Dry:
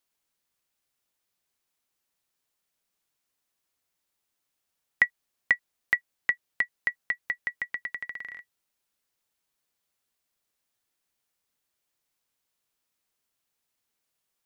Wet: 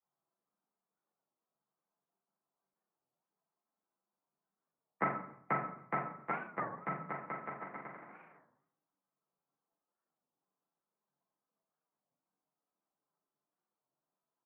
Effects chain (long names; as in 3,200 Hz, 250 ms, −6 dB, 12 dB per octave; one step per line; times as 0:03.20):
harmonic-percussive split with one part muted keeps percussive
frequency shifter +140 Hz
low-shelf EQ 220 Hz +5 dB
repeating echo 138 ms, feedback 33%, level −22 dB
phase-vocoder pitch shift with formants kept −8 semitones
elliptic band-pass filter 170–1,200 Hz, stop band 80 dB
double-tracking delay 43 ms −5.5 dB
convolution reverb RT60 0.65 s, pre-delay 6 ms, DRR −6 dB
wow of a warped record 33 1/3 rpm, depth 250 cents
level −4 dB